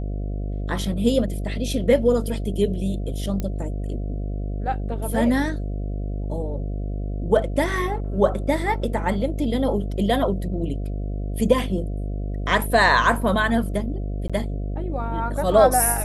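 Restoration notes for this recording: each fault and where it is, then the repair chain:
buzz 50 Hz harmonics 14 -27 dBFS
3.4 pop -14 dBFS
14.28–14.3 gap 16 ms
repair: de-click; de-hum 50 Hz, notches 14; interpolate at 14.28, 16 ms

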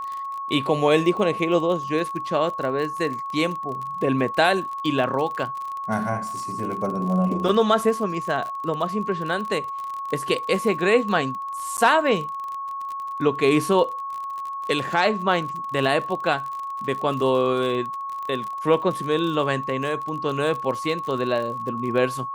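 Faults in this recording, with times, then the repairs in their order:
crackle 38/s -29 dBFS
tone 1100 Hz -28 dBFS
11.77–11.78 gap 9.5 ms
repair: de-click; notch 1100 Hz, Q 30; interpolate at 11.77, 9.5 ms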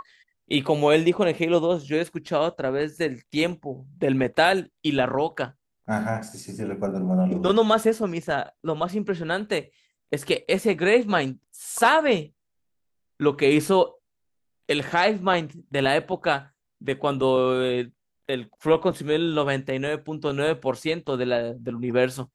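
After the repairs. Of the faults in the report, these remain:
none

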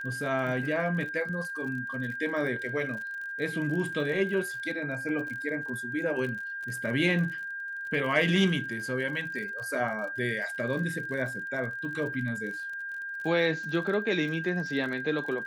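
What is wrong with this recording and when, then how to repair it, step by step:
crackle 42/s -37 dBFS
tone 1600 Hz -34 dBFS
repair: de-click; notch 1600 Hz, Q 30

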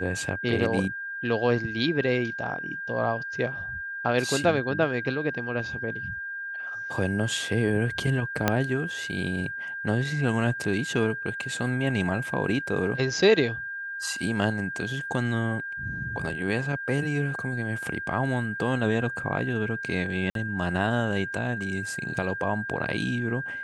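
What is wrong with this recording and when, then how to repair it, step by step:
tone 1600 Hz -32 dBFS
8.48 pop -6 dBFS
20.3–20.35 gap 52 ms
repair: de-click; notch 1600 Hz, Q 30; interpolate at 20.3, 52 ms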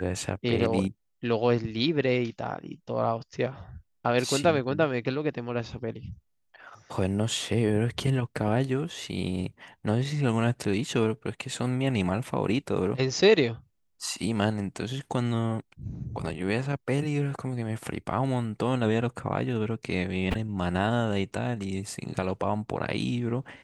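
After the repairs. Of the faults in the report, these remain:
8.48 pop

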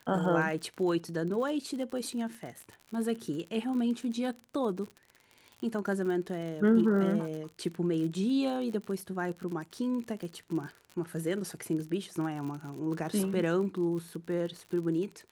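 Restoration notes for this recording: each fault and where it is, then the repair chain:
crackle 53/s -37 dBFS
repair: de-click

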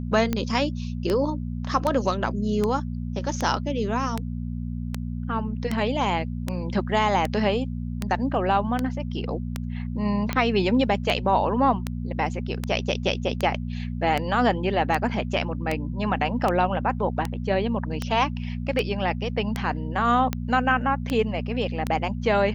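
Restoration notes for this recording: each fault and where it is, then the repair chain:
hum 60 Hz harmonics 4 -30 dBFS
tick 78 rpm -11 dBFS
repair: de-click; de-hum 60 Hz, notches 4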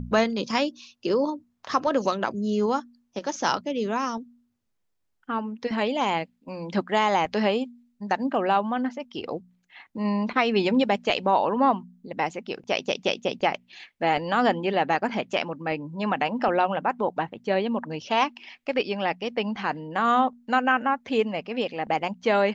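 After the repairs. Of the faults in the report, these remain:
none

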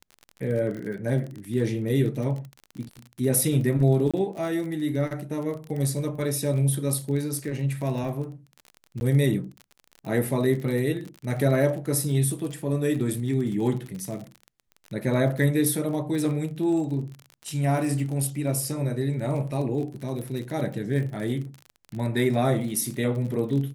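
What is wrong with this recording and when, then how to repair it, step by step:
crackle 35/s -32 dBFS
4.11–4.14 gap 26 ms
9–9.01 gap 11 ms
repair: de-click; interpolate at 4.11, 26 ms; interpolate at 9, 11 ms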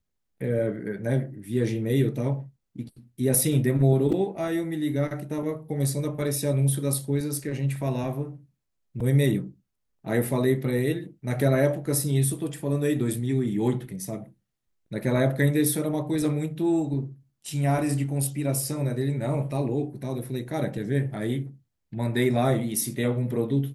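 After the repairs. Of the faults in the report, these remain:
none

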